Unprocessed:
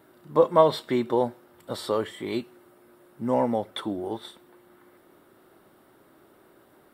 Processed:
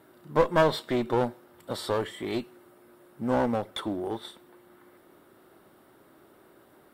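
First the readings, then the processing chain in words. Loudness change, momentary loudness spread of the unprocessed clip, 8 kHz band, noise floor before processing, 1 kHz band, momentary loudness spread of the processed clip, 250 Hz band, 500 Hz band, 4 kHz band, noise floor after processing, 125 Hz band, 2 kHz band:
-2.5 dB, 15 LU, +0.5 dB, -58 dBFS, -2.5 dB, 14 LU, -1.5 dB, -3.5 dB, 0.0 dB, -58 dBFS, +1.5 dB, +6.0 dB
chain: one-sided clip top -28 dBFS

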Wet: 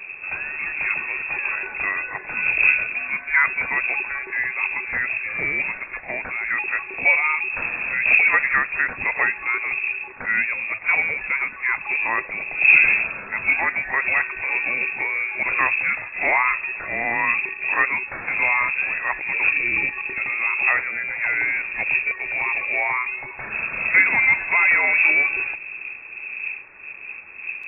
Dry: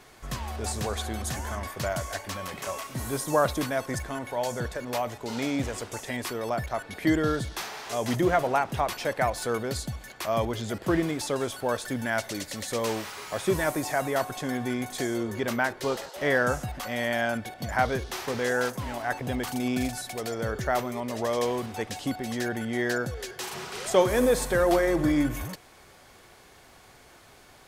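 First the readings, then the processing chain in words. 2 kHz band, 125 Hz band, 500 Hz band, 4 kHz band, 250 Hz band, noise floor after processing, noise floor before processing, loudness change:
+16.0 dB, under -10 dB, -10.0 dB, under -10 dB, -13.5 dB, -37 dBFS, -53 dBFS, +9.0 dB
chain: wind noise 170 Hz -33 dBFS; frequency inversion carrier 2.6 kHz; pre-echo 39 ms -15 dB; trim +4.5 dB

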